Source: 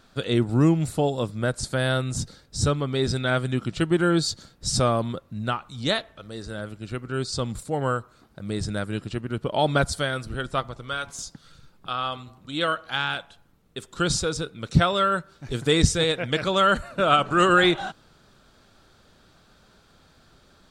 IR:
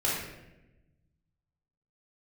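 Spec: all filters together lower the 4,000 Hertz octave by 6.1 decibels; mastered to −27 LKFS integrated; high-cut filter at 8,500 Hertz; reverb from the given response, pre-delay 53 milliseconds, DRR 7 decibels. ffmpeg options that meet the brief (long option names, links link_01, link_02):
-filter_complex "[0:a]lowpass=8500,equalizer=frequency=4000:width_type=o:gain=-7.5,asplit=2[link_01][link_02];[1:a]atrim=start_sample=2205,adelay=53[link_03];[link_02][link_03]afir=irnorm=-1:irlink=0,volume=-16.5dB[link_04];[link_01][link_04]amix=inputs=2:normalize=0,volume=-2.5dB"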